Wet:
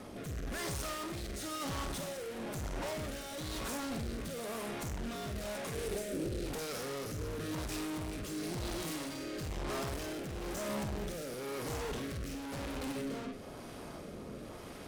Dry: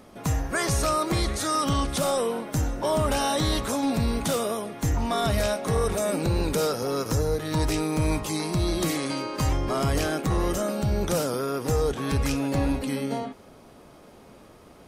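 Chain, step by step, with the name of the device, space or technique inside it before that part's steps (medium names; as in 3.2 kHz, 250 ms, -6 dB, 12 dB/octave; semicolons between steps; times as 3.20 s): overdriven rotary cabinet (valve stage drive 45 dB, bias 0.45; rotary cabinet horn 1 Hz); 5.74–6.46 s: fifteen-band graphic EQ 400 Hz +8 dB, 1 kHz -10 dB, 10 kHz +3 dB; flutter echo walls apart 8.3 m, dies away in 0.33 s; trim +8 dB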